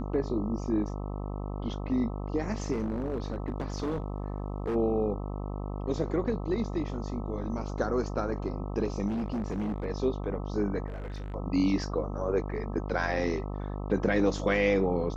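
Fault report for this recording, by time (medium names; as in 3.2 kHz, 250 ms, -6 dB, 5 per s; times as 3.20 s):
buzz 50 Hz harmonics 26 -35 dBFS
2.72–4.76 s: clipped -27 dBFS
9.07–9.86 s: clipped -28 dBFS
10.88–11.34 s: clipped -34 dBFS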